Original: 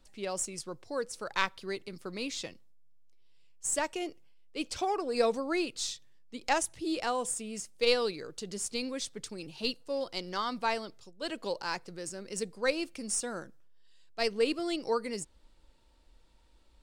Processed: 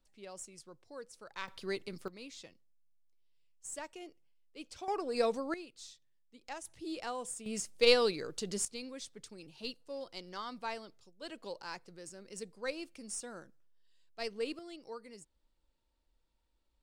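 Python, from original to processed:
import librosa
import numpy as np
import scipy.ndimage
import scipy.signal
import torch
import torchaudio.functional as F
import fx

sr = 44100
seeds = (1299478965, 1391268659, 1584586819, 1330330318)

y = fx.gain(x, sr, db=fx.steps((0.0, -13.0), (1.48, -0.5), (2.08, -12.5), (4.88, -3.5), (5.54, -16.0), (6.65, -8.0), (7.46, 1.5), (8.65, -9.0), (14.59, -15.5)))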